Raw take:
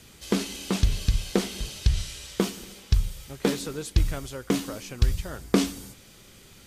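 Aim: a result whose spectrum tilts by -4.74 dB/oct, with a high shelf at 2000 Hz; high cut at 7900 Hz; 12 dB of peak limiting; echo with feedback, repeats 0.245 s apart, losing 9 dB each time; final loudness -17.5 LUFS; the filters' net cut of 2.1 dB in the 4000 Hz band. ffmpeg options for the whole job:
-af "lowpass=7.9k,highshelf=f=2k:g=3,equalizer=f=4k:t=o:g=-5.5,alimiter=limit=-18dB:level=0:latency=1,aecho=1:1:245|490|735|980:0.355|0.124|0.0435|0.0152,volume=15dB"

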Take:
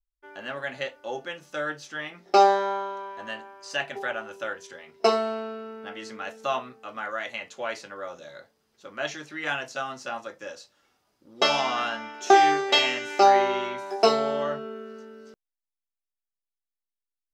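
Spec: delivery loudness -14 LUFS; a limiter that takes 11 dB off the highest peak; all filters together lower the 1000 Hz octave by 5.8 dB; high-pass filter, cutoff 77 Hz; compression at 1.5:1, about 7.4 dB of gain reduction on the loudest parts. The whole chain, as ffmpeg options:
-af "highpass=77,equalizer=f=1k:t=o:g=-8.5,acompressor=threshold=-37dB:ratio=1.5,volume=23.5dB,alimiter=limit=-1.5dB:level=0:latency=1"

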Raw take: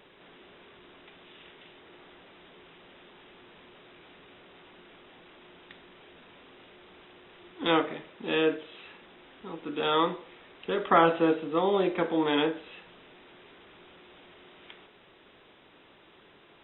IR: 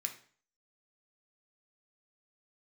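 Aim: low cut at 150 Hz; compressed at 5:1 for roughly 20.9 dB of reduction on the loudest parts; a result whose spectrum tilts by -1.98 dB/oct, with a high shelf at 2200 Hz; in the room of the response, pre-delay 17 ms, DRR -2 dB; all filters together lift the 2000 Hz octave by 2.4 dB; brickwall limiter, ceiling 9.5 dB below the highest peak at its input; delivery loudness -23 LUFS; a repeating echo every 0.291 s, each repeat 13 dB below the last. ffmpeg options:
-filter_complex "[0:a]highpass=150,equalizer=f=2k:t=o:g=7.5,highshelf=f=2.2k:g=-8,acompressor=threshold=-41dB:ratio=5,alimiter=level_in=10.5dB:limit=-24dB:level=0:latency=1,volume=-10.5dB,aecho=1:1:291|582|873:0.224|0.0493|0.0108,asplit=2[a][b];[1:a]atrim=start_sample=2205,adelay=17[c];[b][c]afir=irnorm=-1:irlink=0,volume=2.5dB[d];[a][d]amix=inputs=2:normalize=0,volume=23dB"

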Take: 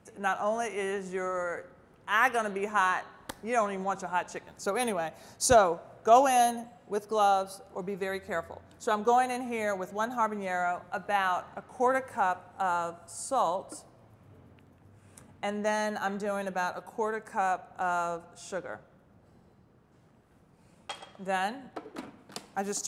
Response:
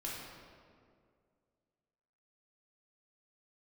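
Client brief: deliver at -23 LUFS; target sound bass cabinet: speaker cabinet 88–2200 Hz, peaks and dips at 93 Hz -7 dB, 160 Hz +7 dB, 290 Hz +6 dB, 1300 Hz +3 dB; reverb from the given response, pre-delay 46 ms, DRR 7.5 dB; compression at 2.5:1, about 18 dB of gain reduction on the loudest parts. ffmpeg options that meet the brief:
-filter_complex "[0:a]acompressor=threshold=-44dB:ratio=2.5,asplit=2[a][b];[1:a]atrim=start_sample=2205,adelay=46[c];[b][c]afir=irnorm=-1:irlink=0,volume=-8.5dB[d];[a][d]amix=inputs=2:normalize=0,highpass=f=88:w=0.5412,highpass=f=88:w=1.3066,equalizer=f=93:t=q:w=4:g=-7,equalizer=f=160:t=q:w=4:g=7,equalizer=f=290:t=q:w=4:g=6,equalizer=f=1.3k:t=q:w=4:g=3,lowpass=f=2.2k:w=0.5412,lowpass=f=2.2k:w=1.3066,volume=18.5dB"

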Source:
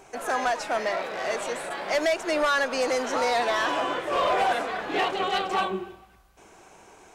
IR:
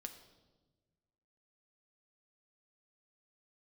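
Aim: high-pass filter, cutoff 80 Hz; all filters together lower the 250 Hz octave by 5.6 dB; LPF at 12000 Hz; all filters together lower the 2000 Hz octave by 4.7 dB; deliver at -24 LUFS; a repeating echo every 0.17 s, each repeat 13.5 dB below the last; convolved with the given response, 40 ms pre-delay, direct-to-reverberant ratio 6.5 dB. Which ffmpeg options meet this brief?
-filter_complex "[0:a]highpass=80,lowpass=12k,equalizer=f=250:t=o:g=-8,equalizer=f=2k:t=o:g=-6,aecho=1:1:170|340:0.211|0.0444,asplit=2[a][b];[1:a]atrim=start_sample=2205,adelay=40[c];[b][c]afir=irnorm=-1:irlink=0,volume=-2dB[d];[a][d]amix=inputs=2:normalize=0,volume=3dB"

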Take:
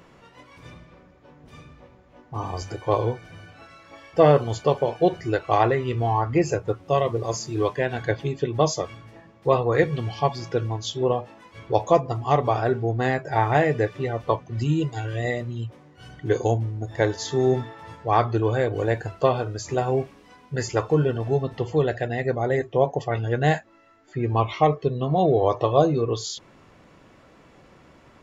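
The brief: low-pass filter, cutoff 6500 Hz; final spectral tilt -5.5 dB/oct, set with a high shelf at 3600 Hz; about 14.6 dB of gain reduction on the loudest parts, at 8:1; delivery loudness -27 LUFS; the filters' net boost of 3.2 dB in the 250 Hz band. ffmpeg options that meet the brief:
-af "lowpass=6.5k,equalizer=f=250:t=o:g=5,highshelf=f=3.6k:g=8,acompressor=threshold=-27dB:ratio=8,volume=5.5dB"

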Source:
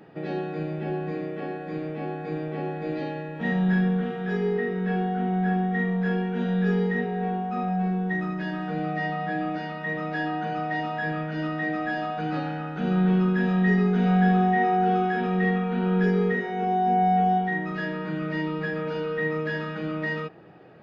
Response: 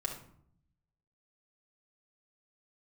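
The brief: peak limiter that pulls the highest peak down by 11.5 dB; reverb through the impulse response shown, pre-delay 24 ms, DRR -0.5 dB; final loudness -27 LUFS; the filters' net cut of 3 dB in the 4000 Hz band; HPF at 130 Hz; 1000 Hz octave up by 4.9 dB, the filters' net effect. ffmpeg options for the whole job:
-filter_complex "[0:a]highpass=130,equalizer=f=1k:t=o:g=8.5,equalizer=f=4k:t=o:g=-5.5,alimiter=limit=-21.5dB:level=0:latency=1,asplit=2[a][b];[1:a]atrim=start_sample=2205,adelay=24[c];[b][c]afir=irnorm=-1:irlink=0,volume=-1.5dB[d];[a][d]amix=inputs=2:normalize=0,volume=-0.5dB"

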